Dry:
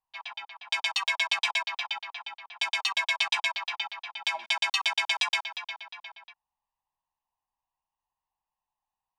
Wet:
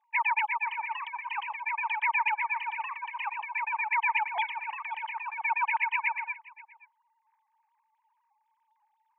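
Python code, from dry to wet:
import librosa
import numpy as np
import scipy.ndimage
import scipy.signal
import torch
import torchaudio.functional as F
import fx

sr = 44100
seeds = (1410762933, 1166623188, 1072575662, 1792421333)

y = fx.sine_speech(x, sr)
y = scipy.signal.sosfilt(scipy.signal.butter(2, 220.0, 'highpass', fs=sr, output='sos'), y)
y = fx.over_compress(y, sr, threshold_db=-40.0, ratio=-1.0)
y = fx.notch_comb(y, sr, f0_hz=1400.0)
y = y + 10.0 ** (-21.0 / 20.0) * np.pad(y, (int(527 * sr / 1000.0), 0))[:len(y)]
y = F.gain(torch.from_numpy(y), 8.5).numpy()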